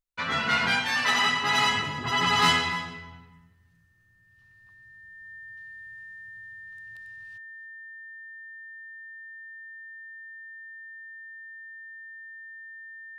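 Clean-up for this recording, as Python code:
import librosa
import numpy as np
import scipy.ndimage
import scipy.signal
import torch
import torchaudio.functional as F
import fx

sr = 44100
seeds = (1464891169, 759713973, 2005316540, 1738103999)

y = fx.notch(x, sr, hz=1800.0, q=30.0)
y = fx.fix_echo_inverse(y, sr, delay_ms=286, level_db=-18.5)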